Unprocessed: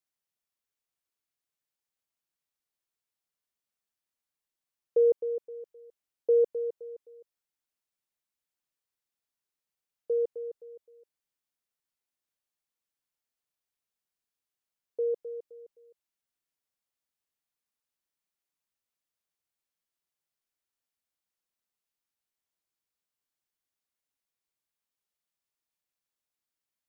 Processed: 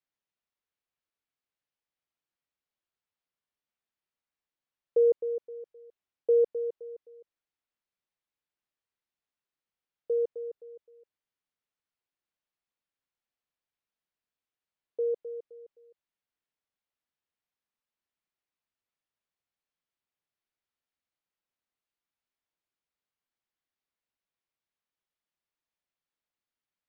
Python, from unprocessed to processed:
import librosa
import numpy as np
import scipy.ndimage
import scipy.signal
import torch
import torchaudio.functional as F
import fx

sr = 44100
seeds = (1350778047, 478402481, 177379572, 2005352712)

y = scipy.signal.sosfilt(scipy.signal.butter(2, 3700.0, 'lowpass', fs=sr, output='sos'), x)